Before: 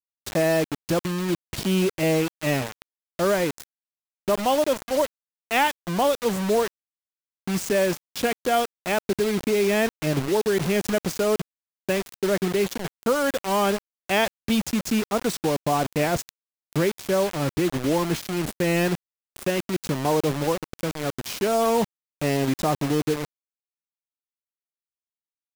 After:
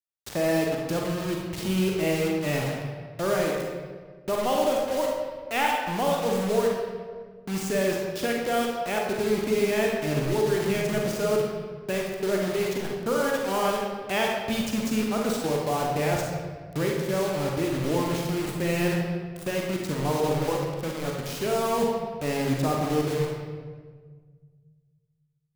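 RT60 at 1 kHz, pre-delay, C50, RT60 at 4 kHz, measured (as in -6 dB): 1.4 s, 37 ms, 0.5 dB, 1.1 s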